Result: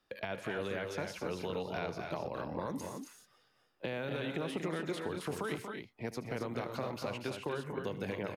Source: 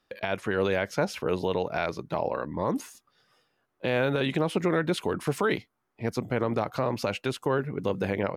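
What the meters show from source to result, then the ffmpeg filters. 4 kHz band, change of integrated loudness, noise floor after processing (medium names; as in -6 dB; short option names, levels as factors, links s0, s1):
-8.5 dB, -10.0 dB, -72 dBFS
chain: -filter_complex "[0:a]acrossover=split=200|2600[s0][s1][s2];[s0]acompressor=threshold=0.00631:ratio=4[s3];[s1]acompressor=threshold=0.02:ratio=4[s4];[s2]acompressor=threshold=0.00501:ratio=4[s5];[s3][s4][s5]amix=inputs=3:normalize=0,aecho=1:1:77|125|236|269:0.158|0.133|0.398|0.473,volume=0.668"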